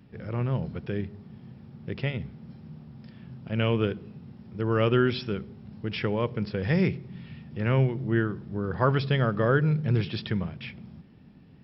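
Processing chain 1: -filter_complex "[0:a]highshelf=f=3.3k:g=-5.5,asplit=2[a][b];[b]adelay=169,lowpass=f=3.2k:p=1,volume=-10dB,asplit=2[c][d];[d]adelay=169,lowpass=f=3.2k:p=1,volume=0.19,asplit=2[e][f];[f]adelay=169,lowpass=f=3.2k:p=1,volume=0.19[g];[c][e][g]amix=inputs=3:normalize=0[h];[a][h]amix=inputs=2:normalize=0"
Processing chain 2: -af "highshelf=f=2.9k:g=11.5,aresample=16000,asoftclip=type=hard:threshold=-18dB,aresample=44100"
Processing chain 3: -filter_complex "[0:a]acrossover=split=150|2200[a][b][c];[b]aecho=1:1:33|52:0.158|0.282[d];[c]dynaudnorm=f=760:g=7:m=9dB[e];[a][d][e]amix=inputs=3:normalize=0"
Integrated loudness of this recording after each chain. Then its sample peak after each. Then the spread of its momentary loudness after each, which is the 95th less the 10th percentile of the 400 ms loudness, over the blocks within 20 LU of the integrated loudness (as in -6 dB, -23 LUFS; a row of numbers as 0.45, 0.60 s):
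-27.5, -28.0, -26.5 LUFS; -9.5, -15.0, -8.5 dBFS; 21, 21, 22 LU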